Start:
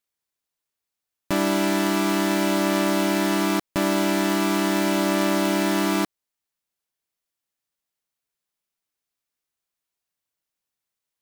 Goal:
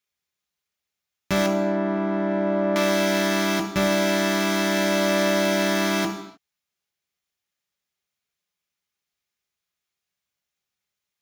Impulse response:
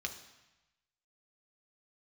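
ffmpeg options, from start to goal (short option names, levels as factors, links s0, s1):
-filter_complex "[0:a]asettb=1/sr,asplit=3[s0][s1][s2];[s0]atrim=end=1.464[s3];[s1]atrim=start=1.46:end=2.76,asetpts=PTS-STARTPTS,afade=t=in:d=0.004:c=qsin,afade=t=out:st=1.296:d=0.004:c=qsin,lowpass=1000[s4];[s2]atrim=start=2.756[s5];[s3][s4]acrossfade=d=0.004:c1=hsin:c2=qsin[s6];[s6][s5]acrossfade=d=0.004:c1=qsin:c2=hsin[s7];[1:a]atrim=start_sample=2205,afade=t=out:st=0.37:d=0.01,atrim=end_sample=16758[s8];[s7][s8]afir=irnorm=-1:irlink=0,volume=1.26"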